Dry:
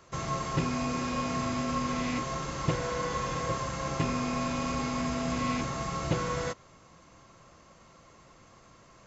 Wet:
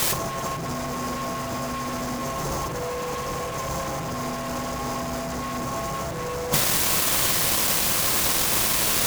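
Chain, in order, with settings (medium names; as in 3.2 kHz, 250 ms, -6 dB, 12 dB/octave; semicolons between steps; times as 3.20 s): high-order bell 2.4 kHz -13 dB; hum notches 50/100/150/200/250 Hz; in parallel at -12 dB: word length cut 6-bit, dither triangular; on the sum: dynamic bell 750 Hz, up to +5 dB, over -45 dBFS, Q 2; fuzz box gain 37 dB, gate -46 dBFS; compressor with a negative ratio -23 dBFS, ratio -0.5; on a send: flutter echo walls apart 8.4 m, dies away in 0.26 s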